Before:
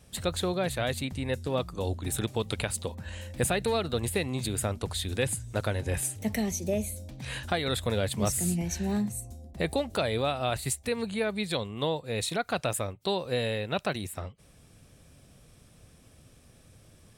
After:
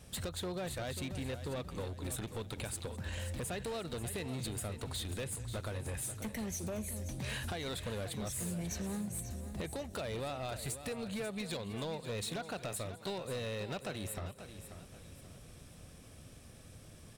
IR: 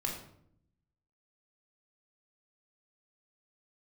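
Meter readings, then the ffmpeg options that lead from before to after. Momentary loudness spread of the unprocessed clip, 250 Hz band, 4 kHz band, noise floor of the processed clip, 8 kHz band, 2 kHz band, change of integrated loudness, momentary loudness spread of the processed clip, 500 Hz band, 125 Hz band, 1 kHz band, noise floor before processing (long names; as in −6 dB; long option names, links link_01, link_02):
6 LU, −9.0 dB, −9.0 dB, −55 dBFS, −8.0 dB, −10.0 dB, −9.5 dB, 15 LU, −10.5 dB, −7.5 dB, −11.0 dB, −57 dBFS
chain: -filter_complex "[0:a]acompressor=threshold=-36dB:ratio=8,asplit=2[link_01][link_02];[link_02]aecho=0:1:207:0.0891[link_03];[link_01][link_03]amix=inputs=2:normalize=0,asoftclip=type=hard:threshold=-36.5dB,asplit=2[link_04][link_05];[link_05]aecho=0:1:538|1076|1614|2152:0.282|0.104|0.0386|0.0143[link_06];[link_04][link_06]amix=inputs=2:normalize=0,volume=1.5dB"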